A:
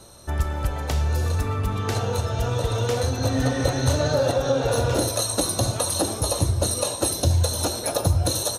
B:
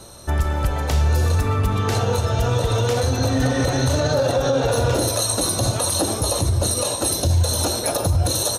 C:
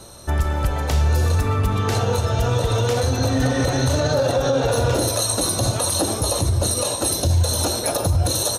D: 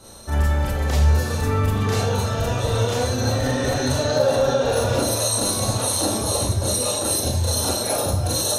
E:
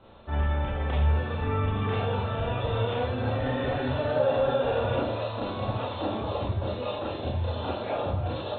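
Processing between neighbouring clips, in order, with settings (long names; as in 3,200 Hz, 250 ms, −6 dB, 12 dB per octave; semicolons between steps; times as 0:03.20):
brickwall limiter −16 dBFS, peak gain reduction 8 dB; level +5.5 dB
no processing that can be heard
four-comb reverb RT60 0.3 s, combs from 28 ms, DRR −6 dB; level −7 dB
Chebyshev low-pass with heavy ripple 3,600 Hz, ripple 3 dB; level −4 dB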